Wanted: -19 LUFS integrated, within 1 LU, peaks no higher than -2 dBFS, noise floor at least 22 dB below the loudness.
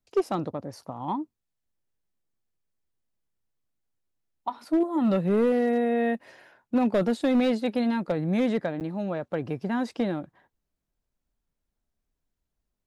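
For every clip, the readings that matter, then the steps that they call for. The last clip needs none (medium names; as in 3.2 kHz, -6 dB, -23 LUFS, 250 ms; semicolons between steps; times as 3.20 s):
clipped samples 0.6%; clipping level -17.0 dBFS; dropouts 1; longest dropout 9.0 ms; loudness -27.0 LUFS; peak level -17.0 dBFS; loudness target -19.0 LUFS
-> clip repair -17 dBFS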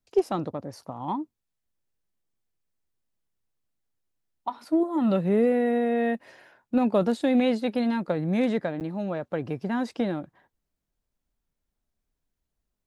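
clipped samples 0.0%; dropouts 1; longest dropout 9.0 ms
-> interpolate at 8.80 s, 9 ms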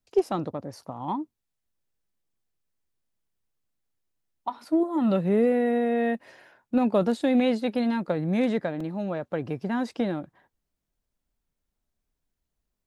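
dropouts 0; loudness -26.5 LUFS; peak level -10.0 dBFS; loudness target -19.0 LUFS
-> trim +7.5 dB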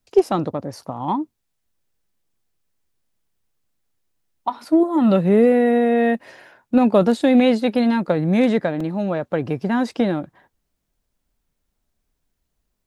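loudness -19.0 LUFS; peak level -2.5 dBFS; noise floor -75 dBFS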